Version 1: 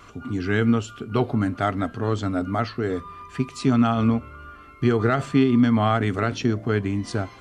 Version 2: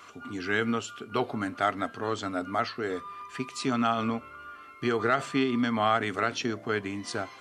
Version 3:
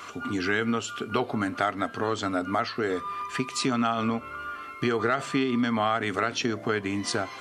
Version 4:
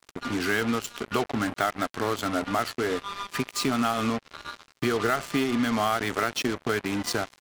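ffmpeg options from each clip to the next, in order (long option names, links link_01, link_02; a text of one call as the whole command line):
ffmpeg -i in.wav -af "highpass=frequency=690:poles=1" out.wav
ffmpeg -i in.wav -af "acompressor=threshold=-34dB:ratio=2.5,volume=8.5dB" out.wav
ffmpeg -i in.wav -af "acrusher=bits=4:mix=0:aa=0.5" out.wav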